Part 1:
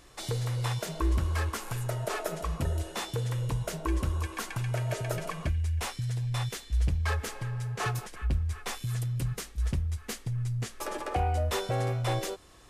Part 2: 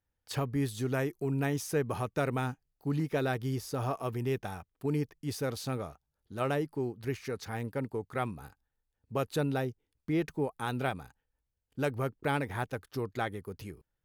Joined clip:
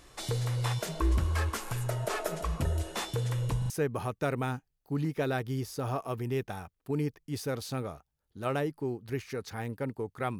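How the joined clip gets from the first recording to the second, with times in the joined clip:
part 1
3.58 stutter in place 0.04 s, 3 plays
3.7 switch to part 2 from 1.65 s

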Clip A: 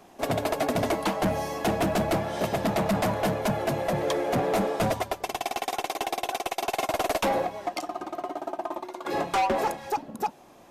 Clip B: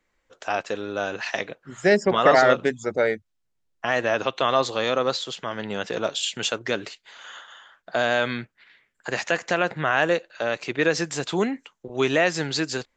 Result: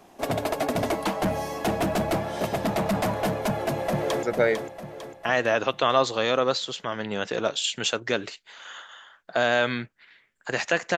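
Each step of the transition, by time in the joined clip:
clip A
3.47–4.23 echo throw 0.45 s, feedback 50%, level -7 dB
4.23 switch to clip B from 2.82 s

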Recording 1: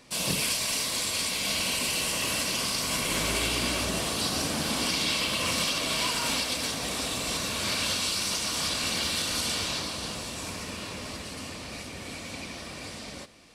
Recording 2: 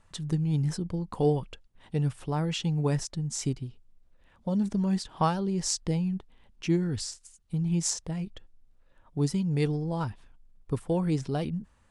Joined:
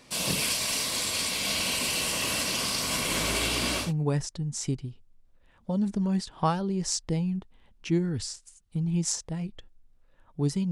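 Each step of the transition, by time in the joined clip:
recording 1
3.85 switch to recording 2 from 2.63 s, crossfade 0.16 s

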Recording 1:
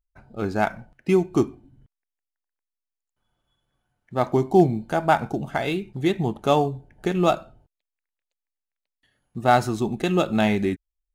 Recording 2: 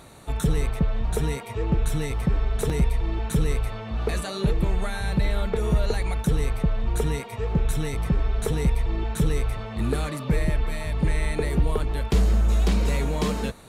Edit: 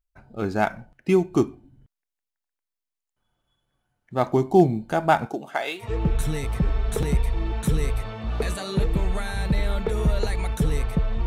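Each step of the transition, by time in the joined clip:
recording 1
5.25–5.88 HPF 260 Hz -> 850 Hz
5.82 switch to recording 2 from 1.49 s, crossfade 0.12 s

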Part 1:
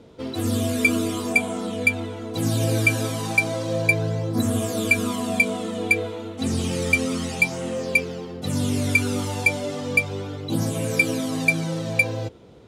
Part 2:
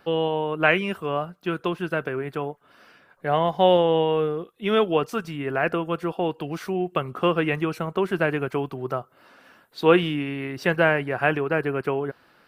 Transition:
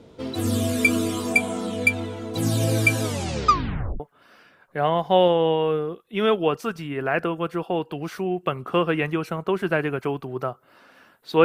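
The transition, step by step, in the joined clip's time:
part 1
3.03 tape stop 0.97 s
4 switch to part 2 from 2.49 s

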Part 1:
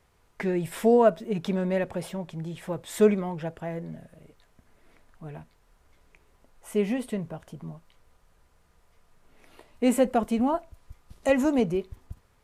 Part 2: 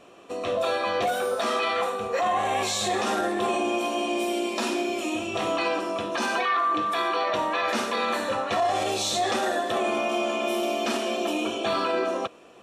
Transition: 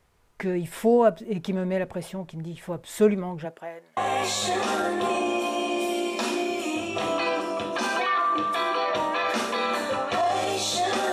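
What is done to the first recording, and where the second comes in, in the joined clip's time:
part 1
3.44–3.97 HPF 190 Hz -> 1400 Hz
3.97 switch to part 2 from 2.36 s

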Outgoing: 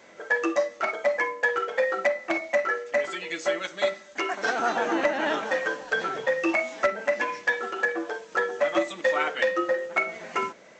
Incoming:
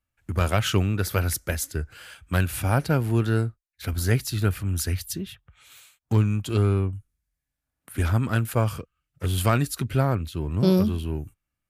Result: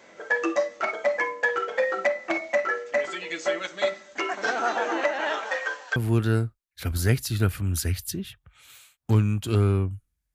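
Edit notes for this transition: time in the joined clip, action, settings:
outgoing
4.58–5.96 HPF 250 Hz -> 970 Hz
5.96 switch to incoming from 2.98 s

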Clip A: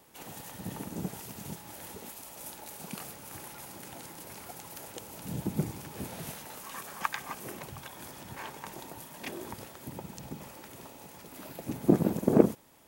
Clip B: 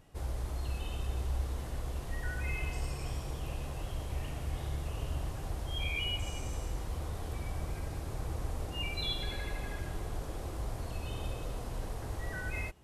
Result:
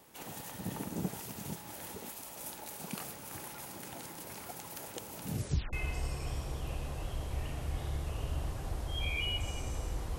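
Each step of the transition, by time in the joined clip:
clip A
5.29 tape stop 0.44 s
5.73 switch to clip B from 2.52 s

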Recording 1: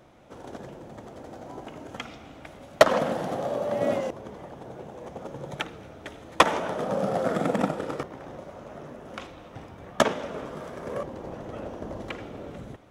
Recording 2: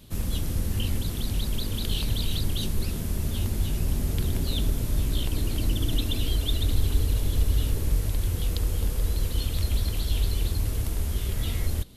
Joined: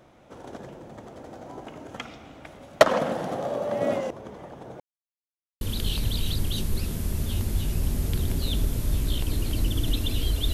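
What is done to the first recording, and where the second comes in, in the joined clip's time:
recording 1
4.8–5.61 mute
5.61 switch to recording 2 from 1.66 s

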